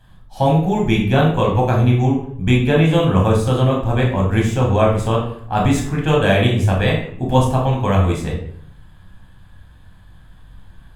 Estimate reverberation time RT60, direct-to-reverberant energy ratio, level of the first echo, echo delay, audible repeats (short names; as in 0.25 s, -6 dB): 0.65 s, -2.5 dB, none, none, none